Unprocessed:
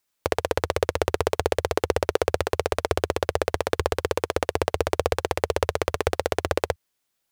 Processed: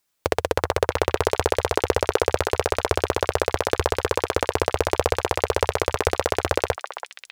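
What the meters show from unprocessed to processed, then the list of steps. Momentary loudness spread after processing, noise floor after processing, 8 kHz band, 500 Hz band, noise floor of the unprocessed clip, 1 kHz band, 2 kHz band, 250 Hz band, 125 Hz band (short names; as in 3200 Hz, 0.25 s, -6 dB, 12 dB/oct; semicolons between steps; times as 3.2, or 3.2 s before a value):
2 LU, -62 dBFS, +2.5 dB, +2.0 dB, -77 dBFS, +3.0 dB, +2.5 dB, +2.0 dB, +2.0 dB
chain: delay with a stepping band-pass 0.331 s, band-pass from 1100 Hz, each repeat 1.4 oct, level -4 dB; companded quantiser 8-bit; gain +2 dB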